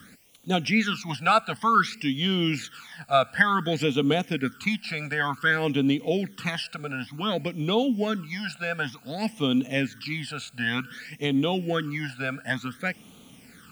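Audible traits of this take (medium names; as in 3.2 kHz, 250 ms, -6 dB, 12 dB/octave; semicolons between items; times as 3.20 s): a quantiser's noise floor 10-bit, dither triangular; phasing stages 12, 0.55 Hz, lowest notch 320–1700 Hz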